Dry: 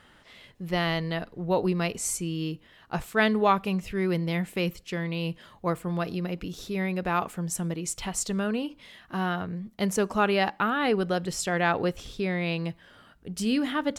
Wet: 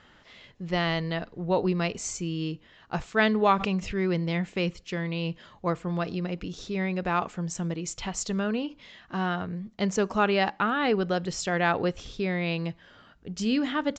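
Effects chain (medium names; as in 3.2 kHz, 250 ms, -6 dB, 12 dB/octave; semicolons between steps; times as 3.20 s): resampled via 16 kHz; 3.42–3.95 s: swell ahead of each attack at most 57 dB/s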